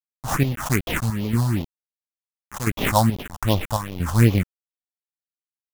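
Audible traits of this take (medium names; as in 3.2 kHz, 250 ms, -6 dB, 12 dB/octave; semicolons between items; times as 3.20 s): aliases and images of a low sample rate 4.5 kHz, jitter 20%; chopped level 1.5 Hz, depth 65%, duty 65%; a quantiser's noise floor 6-bit, dither none; phasing stages 4, 2.6 Hz, lowest notch 350–1600 Hz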